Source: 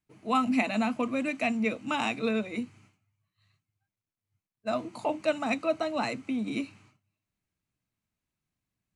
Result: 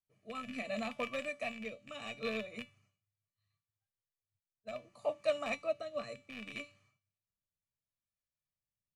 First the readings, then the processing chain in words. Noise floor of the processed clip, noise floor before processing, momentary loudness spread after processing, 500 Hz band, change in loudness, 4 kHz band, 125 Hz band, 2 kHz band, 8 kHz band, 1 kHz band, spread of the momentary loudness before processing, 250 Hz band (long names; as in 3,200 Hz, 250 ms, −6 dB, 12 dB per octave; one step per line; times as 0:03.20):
below −85 dBFS, below −85 dBFS, 11 LU, −6.5 dB, −10.0 dB, −7.0 dB, −12.5 dB, −8.5 dB, −9.5 dB, −13.5 dB, 9 LU, −17.0 dB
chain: loose part that buzzes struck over −35 dBFS, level −21 dBFS
comb filter 1.7 ms, depth 78%
in parallel at −3 dB: brickwall limiter −21 dBFS, peak gain reduction 9.5 dB
on the sum: tuned comb filter 290 Hz, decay 0.32 s, harmonics all, mix 80%
rotating-speaker cabinet horn 0.7 Hz
expander for the loud parts 1.5 to 1, over −48 dBFS
level +2.5 dB